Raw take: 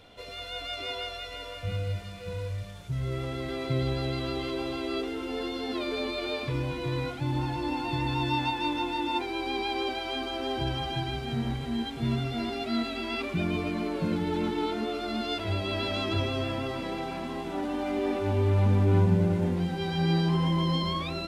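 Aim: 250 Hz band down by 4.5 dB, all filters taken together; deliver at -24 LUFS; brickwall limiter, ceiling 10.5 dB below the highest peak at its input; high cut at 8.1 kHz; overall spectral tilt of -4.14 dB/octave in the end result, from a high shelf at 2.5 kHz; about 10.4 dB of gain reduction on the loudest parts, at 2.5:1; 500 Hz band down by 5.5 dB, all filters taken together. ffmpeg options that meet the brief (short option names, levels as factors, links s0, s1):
-af "lowpass=8100,equalizer=f=250:t=o:g=-5,equalizer=f=500:t=o:g=-5.5,highshelf=f=2500:g=-3.5,acompressor=threshold=0.0158:ratio=2.5,volume=8.91,alimiter=limit=0.158:level=0:latency=1"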